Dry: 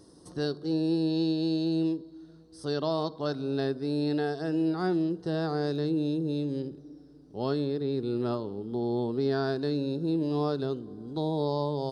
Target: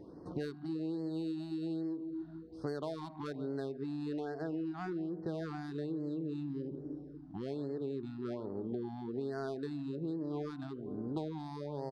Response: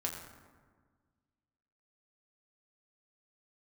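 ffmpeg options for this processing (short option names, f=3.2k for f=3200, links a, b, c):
-filter_complex "[0:a]lowshelf=f=140:g=-5,asplit=2[a][b];[b]adelay=145,lowpass=f=810:p=1,volume=-15dB,asplit=2[c][d];[d]adelay=145,lowpass=f=810:p=1,volume=0.48,asplit=2[e][f];[f]adelay=145,lowpass=f=810:p=1,volume=0.48,asplit=2[g][h];[h]adelay=145,lowpass=f=810:p=1,volume=0.48[i];[a][c][e][g][i]amix=inputs=5:normalize=0,adynamicsmooth=sensitivity=3.5:basefreq=1.5k,equalizer=f=2k:w=1.5:g=2.5,acompressor=threshold=-40dB:ratio=16,afftfilt=real='re*(1-between(b*sr/1024,430*pow(3000/430,0.5+0.5*sin(2*PI*1.2*pts/sr))/1.41,430*pow(3000/430,0.5+0.5*sin(2*PI*1.2*pts/sr))*1.41))':imag='im*(1-between(b*sr/1024,430*pow(3000/430,0.5+0.5*sin(2*PI*1.2*pts/sr))/1.41,430*pow(3000/430,0.5+0.5*sin(2*PI*1.2*pts/sr))*1.41))':win_size=1024:overlap=0.75,volume=5.5dB"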